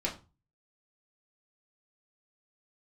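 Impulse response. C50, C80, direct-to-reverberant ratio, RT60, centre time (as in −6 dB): 11.5 dB, 17.5 dB, −3.0 dB, 0.30 s, 18 ms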